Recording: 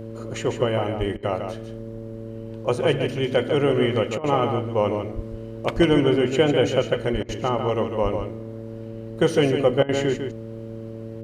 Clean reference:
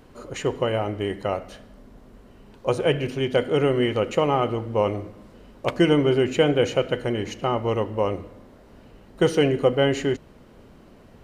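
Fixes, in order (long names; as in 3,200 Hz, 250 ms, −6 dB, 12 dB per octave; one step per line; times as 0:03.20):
hum removal 112.4 Hz, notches 5
high-pass at the plosives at 0:00.99/0:05.15/0:05.75/0:07.12/0:08.02
repair the gap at 0:01.17/0:04.18/0:07.23/0:09.83, 57 ms
echo removal 149 ms −7 dB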